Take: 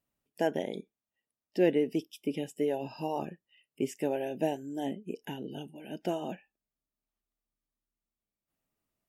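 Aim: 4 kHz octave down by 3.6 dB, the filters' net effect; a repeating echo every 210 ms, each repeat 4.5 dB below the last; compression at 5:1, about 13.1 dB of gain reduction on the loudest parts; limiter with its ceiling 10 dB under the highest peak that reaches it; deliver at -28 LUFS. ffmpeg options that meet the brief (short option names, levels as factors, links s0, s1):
-af "equalizer=f=4000:t=o:g=-6,acompressor=threshold=0.0178:ratio=5,alimiter=level_in=2.51:limit=0.0631:level=0:latency=1,volume=0.398,aecho=1:1:210|420|630|840|1050|1260|1470|1680|1890:0.596|0.357|0.214|0.129|0.0772|0.0463|0.0278|0.0167|0.01,volume=5.62"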